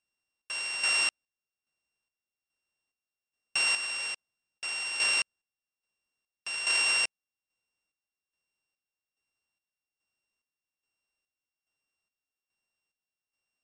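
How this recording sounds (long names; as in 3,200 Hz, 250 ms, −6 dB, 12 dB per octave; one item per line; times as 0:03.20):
a buzz of ramps at a fixed pitch in blocks of 16 samples
chopped level 1.2 Hz, depth 60%, duty 50%
MP3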